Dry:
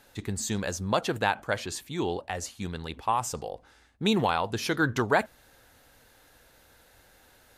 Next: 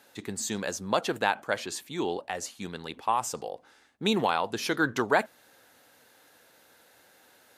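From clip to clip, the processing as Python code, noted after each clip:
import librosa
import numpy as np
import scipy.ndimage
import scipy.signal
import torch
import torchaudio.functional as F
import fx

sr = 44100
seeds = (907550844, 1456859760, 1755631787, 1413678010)

y = scipy.signal.sosfilt(scipy.signal.butter(2, 200.0, 'highpass', fs=sr, output='sos'), x)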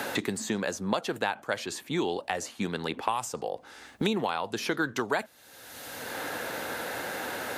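y = fx.band_squash(x, sr, depth_pct=100)
y = y * librosa.db_to_amplitude(-1.5)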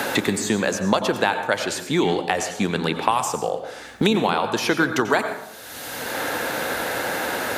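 y = fx.rev_plate(x, sr, seeds[0], rt60_s=0.79, hf_ratio=0.55, predelay_ms=80, drr_db=7.5)
y = y * librosa.db_to_amplitude(8.5)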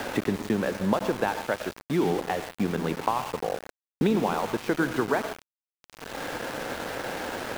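y = fx.spacing_loss(x, sr, db_at_10k=40)
y = np.where(np.abs(y) >= 10.0 ** (-29.5 / 20.0), y, 0.0)
y = y * librosa.db_to_amplitude(-2.5)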